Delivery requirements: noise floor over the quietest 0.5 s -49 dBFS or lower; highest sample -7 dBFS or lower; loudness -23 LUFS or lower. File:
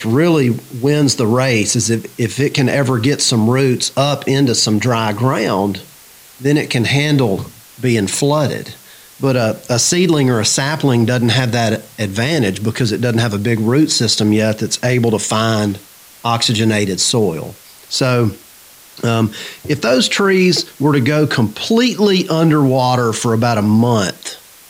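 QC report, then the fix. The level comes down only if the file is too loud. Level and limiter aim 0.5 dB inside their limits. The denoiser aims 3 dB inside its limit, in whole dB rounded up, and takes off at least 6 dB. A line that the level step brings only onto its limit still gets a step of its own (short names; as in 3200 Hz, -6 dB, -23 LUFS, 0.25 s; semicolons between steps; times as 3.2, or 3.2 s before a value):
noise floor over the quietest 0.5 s -42 dBFS: fail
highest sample -3.5 dBFS: fail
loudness -14.5 LUFS: fail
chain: gain -9 dB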